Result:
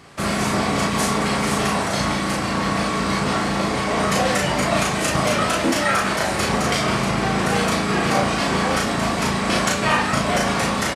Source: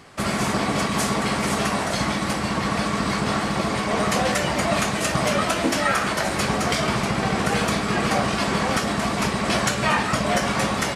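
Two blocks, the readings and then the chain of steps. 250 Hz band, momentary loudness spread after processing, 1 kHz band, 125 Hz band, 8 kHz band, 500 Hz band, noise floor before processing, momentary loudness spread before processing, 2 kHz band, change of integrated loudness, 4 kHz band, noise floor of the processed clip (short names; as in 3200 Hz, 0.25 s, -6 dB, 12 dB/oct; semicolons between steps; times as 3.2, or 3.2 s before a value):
+2.0 dB, 3 LU, +2.5 dB, +2.0 dB, +2.0 dB, +2.0 dB, -26 dBFS, 3 LU, +2.0 dB, +2.0 dB, +2.0 dB, -23 dBFS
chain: doubler 36 ms -2 dB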